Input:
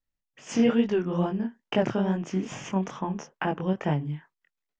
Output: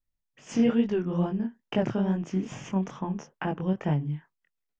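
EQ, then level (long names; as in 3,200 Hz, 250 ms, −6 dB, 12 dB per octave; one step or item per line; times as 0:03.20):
low-shelf EQ 230 Hz +8 dB
−4.5 dB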